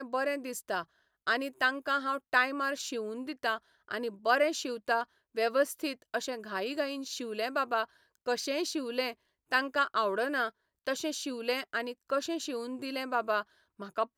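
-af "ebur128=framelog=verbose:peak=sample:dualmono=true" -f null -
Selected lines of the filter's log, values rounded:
Integrated loudness:
  I:         -29.4 LUFS
  Threshold: -39.5 LUFS
Loudness range:
  LRA:         2.8 LU
  Threshold: -49.4 LUFS
  LRA low:   -31.0 LUFS
  LRA high:  -28.3 LUFS
Sample peak:
  Peak:      -13.3 dBFS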